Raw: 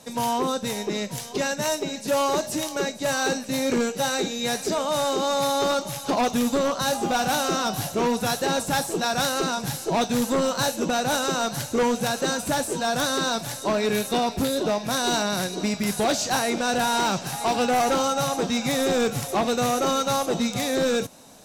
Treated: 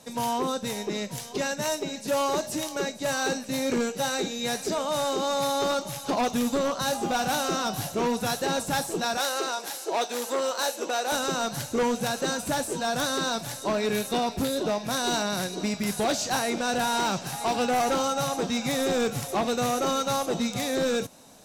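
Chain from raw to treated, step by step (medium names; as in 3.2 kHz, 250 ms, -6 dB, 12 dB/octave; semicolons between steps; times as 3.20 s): 9.17–11.12 s: high-pass 350 Hz 24 dB/octave; trim -3 dB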